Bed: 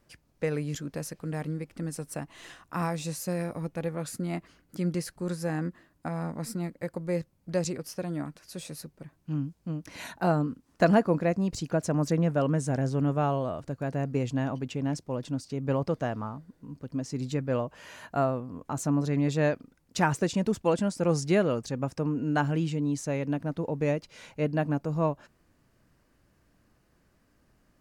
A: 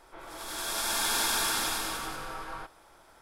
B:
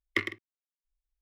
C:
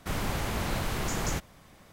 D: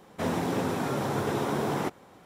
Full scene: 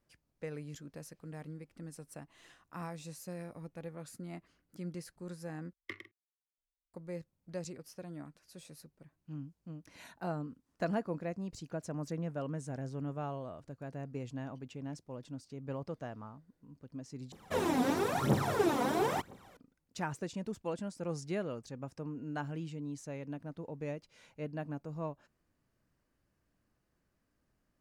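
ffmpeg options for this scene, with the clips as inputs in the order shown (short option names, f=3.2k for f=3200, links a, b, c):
-filter_complex "[0:a]volume=-12.5dB[a];[4:a]aphaser=in_gain=1:out_gain=1:delay=4.2:decay=0.76:speed=1:type=triangular[b];[a]asplit=3[c][d][e];[c]atrim=end=5.734[f];[2:a]atrim=end=1.21,asetpts=PTS-STARTPTS,volume=-15.5dB[g];[d]atrim=start=6.936:end=17.324[h];[b]atrim=end=2.25,asetpts=PTS-STARTPTS,volume=-5.5dB[i];[e]atrim=start=19.566[j];[f][g]acrossfade=d=0.004:c1=hsin:c2=hsin[k];[k][h]acrossfade=d=0.004:c1=hsin:c2=hsin[l];[l][i]acrossfade=d=0.004:c1=hsin:c2=hsin[m];[m][j]acrossfade=d=0.004:c1=hsin:c2=hsin"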